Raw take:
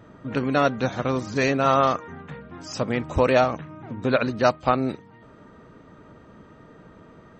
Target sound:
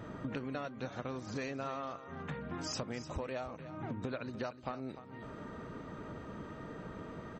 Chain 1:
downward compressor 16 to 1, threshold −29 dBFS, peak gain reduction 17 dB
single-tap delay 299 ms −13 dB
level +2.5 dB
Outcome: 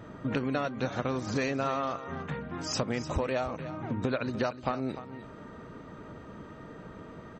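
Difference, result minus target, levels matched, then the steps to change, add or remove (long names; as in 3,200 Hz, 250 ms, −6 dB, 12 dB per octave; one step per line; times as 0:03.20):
downward compressor: peak gain reduction −9.5 dB
change: downward compressor 16 to 1, threshold −39 dBFS, peak gain reduction 26 dB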